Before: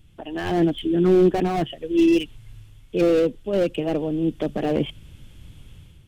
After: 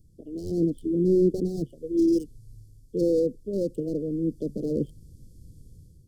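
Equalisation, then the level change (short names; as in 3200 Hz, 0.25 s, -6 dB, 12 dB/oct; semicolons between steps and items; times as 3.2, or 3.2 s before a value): Chebyshev band-stop 500–4600 Hz, order 4; -3.5 dB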